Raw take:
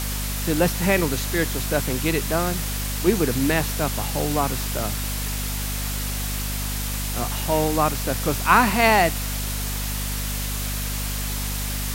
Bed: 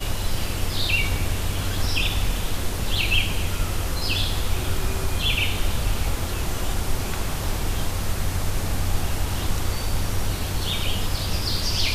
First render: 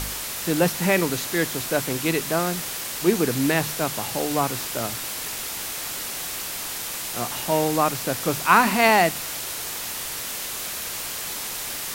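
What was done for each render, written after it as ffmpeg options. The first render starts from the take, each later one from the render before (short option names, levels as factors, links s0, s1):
-af "bandreject=f=50:t=h:w=4,bandreject=f=100:t=h:w=4,bandreject=f=150:t=h:w=4,bandreject=f=200:t=h:w=4,bandreject=f=250:t=h:w=4"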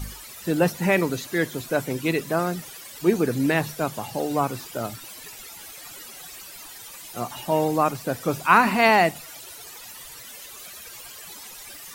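-af "afftdn=nr=15:nf=-31"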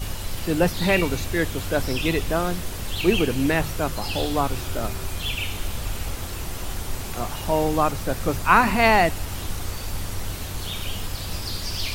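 -filter_complex "[1:a]volume=0.531[s0];[0:a][s0]amix=inputs=2:normalize=0"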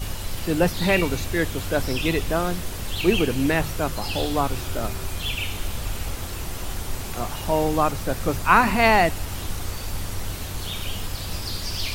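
-af anull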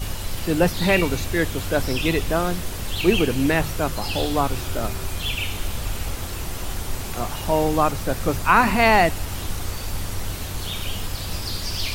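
-af "volume=1.19,alimiter=limit=0.708:level=0:latency=1"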